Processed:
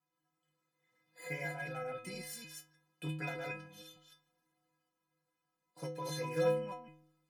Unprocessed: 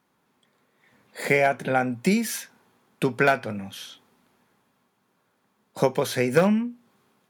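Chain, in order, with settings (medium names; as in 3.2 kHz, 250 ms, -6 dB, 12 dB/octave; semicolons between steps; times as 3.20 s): chunks repeated in reverse 153 ms, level -1.5 dB; inharmonic resonator 150 Hz, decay 0.83 s, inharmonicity 0.03; trim -1 dB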